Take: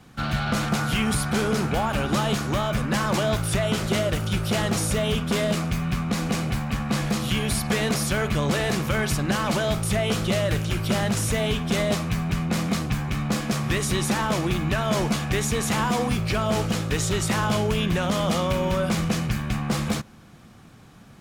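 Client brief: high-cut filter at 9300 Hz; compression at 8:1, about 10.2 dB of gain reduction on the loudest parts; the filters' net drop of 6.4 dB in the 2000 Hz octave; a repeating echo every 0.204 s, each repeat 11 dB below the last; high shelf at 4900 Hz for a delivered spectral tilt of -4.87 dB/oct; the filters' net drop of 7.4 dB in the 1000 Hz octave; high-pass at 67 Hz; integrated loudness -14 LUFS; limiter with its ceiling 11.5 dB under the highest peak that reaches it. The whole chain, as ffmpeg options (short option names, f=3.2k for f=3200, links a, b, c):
-af "highpass=67,lowpass=9.3k,equalizer=f=1k:t=o:g=-8.5,equalizer=f=2k:t=o:g=-6.5,highshelf=f=4.9k:g=5.5,acompressor=threshold=-31dB:ratio=8,alimiter=level_in=7dB:limit=-24dB:level=0:latency=1,volume=-7dB,aecho=1:1:204|408|612:0.282|0.0789|0.0221,volume=24.5dB"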